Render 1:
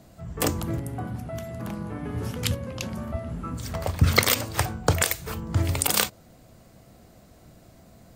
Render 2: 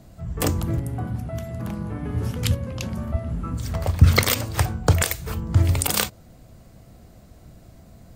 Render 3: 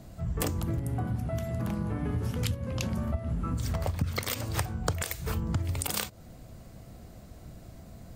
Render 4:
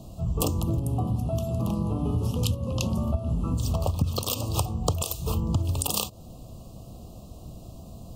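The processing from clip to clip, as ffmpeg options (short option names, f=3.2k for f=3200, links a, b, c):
-af "lowshelf=f=130:g=10"
-af "acompressor=threshold=-26dB:ratio=16"
-af "asuperstop=centerf=1800:order=12:qfactor=1.3,volume=4.5dB"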